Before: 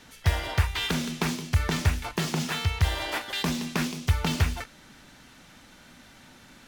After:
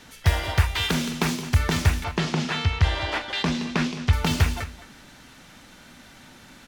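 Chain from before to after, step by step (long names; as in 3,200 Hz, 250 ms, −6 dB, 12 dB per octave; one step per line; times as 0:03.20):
0:02.04–0:04.13: low-pass filter 4,900 Hz 12 dB per octave
slap from a distant wall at 37 metres, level −15 dB
level +3.5 dB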